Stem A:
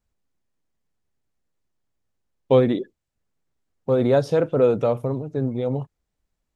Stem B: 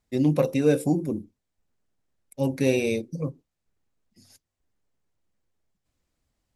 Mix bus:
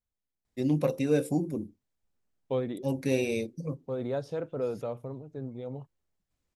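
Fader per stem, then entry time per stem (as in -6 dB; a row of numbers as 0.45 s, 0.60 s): -14.0 dB, -5.0 dB; 0.00 s, 0.45 s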